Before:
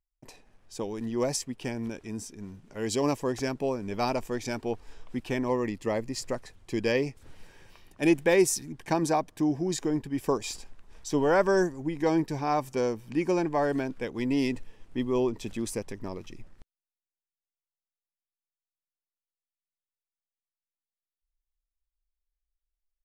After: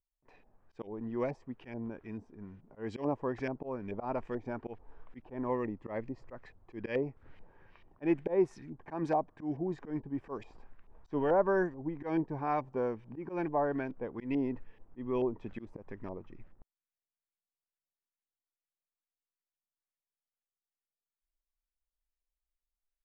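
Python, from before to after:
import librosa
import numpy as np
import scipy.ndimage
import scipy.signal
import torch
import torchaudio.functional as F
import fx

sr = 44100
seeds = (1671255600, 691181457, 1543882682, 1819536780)

y = fx.auto_swell(x, sr, attack_ms=114.0)
y = fx.filter_lfo_lowpass(y, sr, shape='saw_up', hz=2.3, low_hz=690.0, high_hz=2500.0, q=1.4)
y = y * 10.0 ** (-6.0 / 20.0)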